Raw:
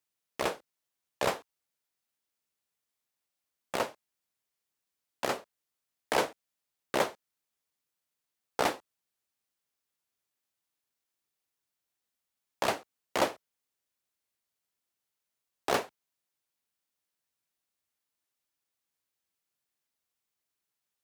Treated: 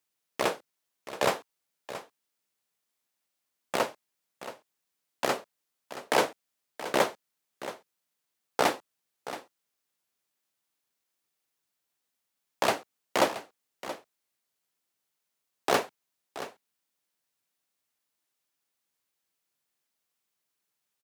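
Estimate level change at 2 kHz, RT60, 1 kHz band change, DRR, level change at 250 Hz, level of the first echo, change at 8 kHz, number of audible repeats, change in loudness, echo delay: +3.5 dB, none, +3.5 dB, none, +3.5 dB, -13.5 dB, +3.5 dB, 1, +2.5 dB, 0.676 s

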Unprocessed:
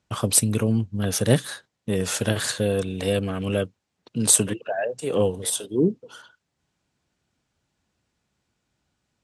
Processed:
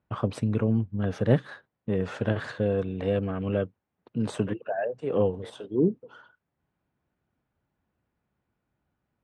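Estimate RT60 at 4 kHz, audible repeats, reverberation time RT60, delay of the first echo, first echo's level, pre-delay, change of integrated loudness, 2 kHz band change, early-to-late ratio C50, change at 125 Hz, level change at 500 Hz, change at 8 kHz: none, none, none, none, none, none, -5.0 dB, -6.0 dB, none, -2.5 dB, -2.5 dB, under -30 dB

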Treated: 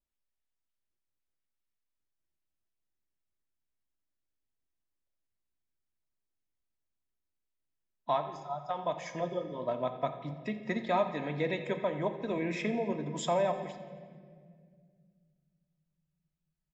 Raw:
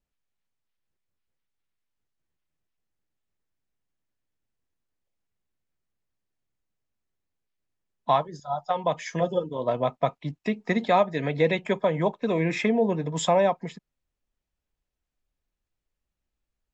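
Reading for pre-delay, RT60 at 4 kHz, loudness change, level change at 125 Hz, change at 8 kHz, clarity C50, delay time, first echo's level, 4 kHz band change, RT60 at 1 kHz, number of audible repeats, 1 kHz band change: 3 ms, 1.4 s, -8.0 dB, -9.0 dB, -8.5 dB, 9.0 dB, 87 ms, -17.0 dB, -8.5 dB, 1.6 s, 4, -8.0 dB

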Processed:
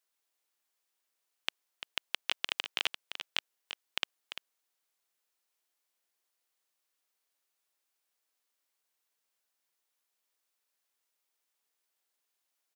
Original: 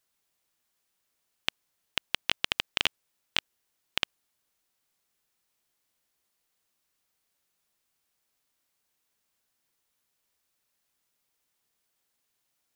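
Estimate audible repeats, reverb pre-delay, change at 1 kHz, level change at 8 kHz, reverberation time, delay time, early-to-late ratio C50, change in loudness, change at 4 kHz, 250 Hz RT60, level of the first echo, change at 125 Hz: 1, none, -4.5 dB, -4.5 dB, none, 0.344 s, none, -5.5 dB, -4.5 dB, none, -9.5 dB, under -20 dB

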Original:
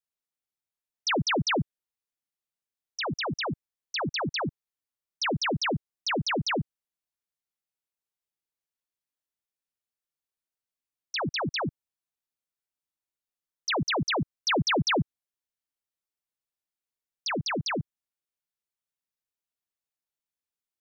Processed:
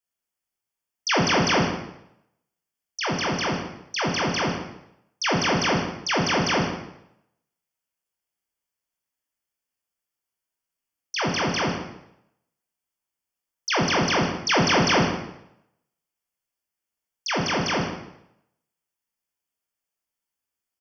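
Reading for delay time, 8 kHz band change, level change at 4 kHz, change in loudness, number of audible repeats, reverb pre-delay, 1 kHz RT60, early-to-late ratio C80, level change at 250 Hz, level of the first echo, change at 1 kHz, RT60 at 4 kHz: 0.151 s, n/a, +4.5 dB, +5.5 dB, 1, 16 ms, 0.80 s, 6.0 dB, +6.0 dB, -13.0 dB, +6.5 dB, 0.70 s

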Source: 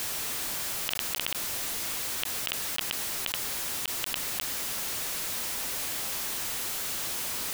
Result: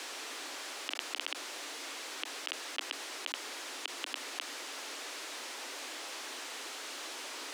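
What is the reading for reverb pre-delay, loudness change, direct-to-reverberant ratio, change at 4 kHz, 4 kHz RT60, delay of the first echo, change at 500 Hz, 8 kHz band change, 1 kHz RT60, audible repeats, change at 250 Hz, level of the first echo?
none, -10.0 dB, none, -5.5 dB, none, none, -3.5 dB, -11.5 dB, none, none, -6.5 dB, none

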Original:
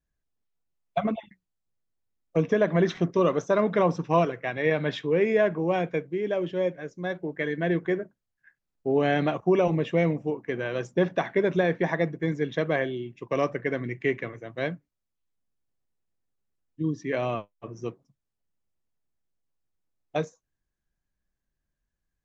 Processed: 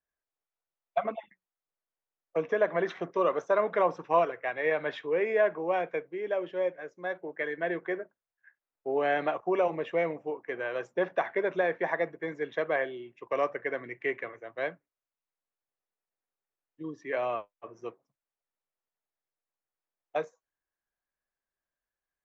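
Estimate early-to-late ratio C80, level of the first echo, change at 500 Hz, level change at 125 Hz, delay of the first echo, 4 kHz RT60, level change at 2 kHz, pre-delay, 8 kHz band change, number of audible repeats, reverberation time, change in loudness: none, none, -3.5 dB, -18.5 dB, none, none, -1.5 dB, none, n/a, none, none, -4.0 dB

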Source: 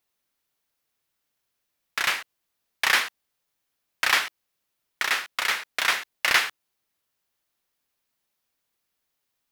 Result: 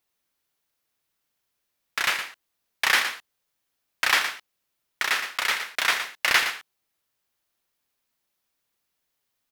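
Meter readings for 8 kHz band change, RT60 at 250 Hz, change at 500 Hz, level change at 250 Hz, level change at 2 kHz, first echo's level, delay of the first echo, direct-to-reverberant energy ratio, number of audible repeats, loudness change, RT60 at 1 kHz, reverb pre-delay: +0.5 dB, none, +0.5 dB, +0.5 dB, +0.5 dB, -9.5 dB, 0.116 s, none, 1, 0.0 dB, none, none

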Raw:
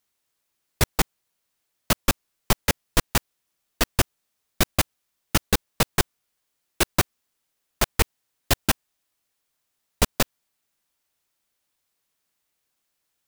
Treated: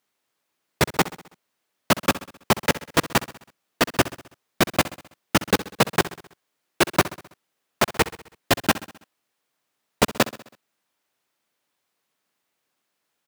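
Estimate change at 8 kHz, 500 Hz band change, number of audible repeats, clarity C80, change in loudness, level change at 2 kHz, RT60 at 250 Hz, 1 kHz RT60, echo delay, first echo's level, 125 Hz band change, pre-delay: -2.0 dB, +5.5 dB, 4, none, +2.0 dB, +4.0 dB, none, none, 65 ms, -16.0 dB, -1.0 dB, none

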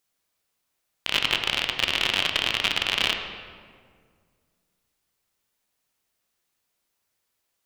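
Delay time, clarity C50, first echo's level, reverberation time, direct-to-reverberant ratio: none, 5.5 dB, none, 1.9 s, 4.0 dB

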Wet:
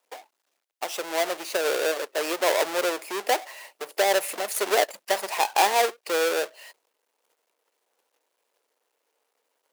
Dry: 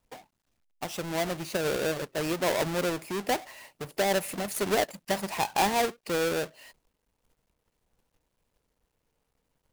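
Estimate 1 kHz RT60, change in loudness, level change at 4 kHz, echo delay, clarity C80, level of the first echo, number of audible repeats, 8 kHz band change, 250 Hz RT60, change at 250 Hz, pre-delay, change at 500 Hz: none, +4.0 dB, +5.0 dB, none, none, none, none, +5.0 dB, none, -4.5 dB, none, +4.0 dB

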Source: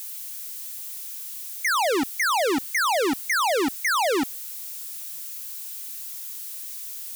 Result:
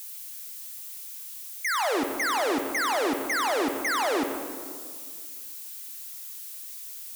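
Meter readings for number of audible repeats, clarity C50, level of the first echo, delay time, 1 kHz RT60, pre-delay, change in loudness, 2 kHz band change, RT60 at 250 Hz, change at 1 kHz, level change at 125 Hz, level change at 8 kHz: none, 5.5 dB, none, none, 1.9 s, 39 ms, -3.5 dB, -3.5 dB, 2.2 s, -3.0 dB, -3.0 dB, -4.5 dB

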